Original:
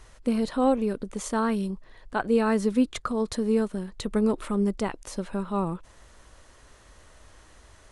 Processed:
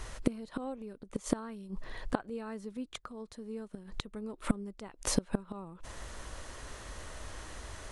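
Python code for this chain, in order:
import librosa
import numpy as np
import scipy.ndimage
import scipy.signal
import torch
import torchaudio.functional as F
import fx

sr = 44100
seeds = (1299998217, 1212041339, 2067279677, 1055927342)

y = fx.gate_flip(x, sr, shuts_db=-22.0, range_db=-26)
y = F.gain(torch.from_numpy(y), 8.0).numpy()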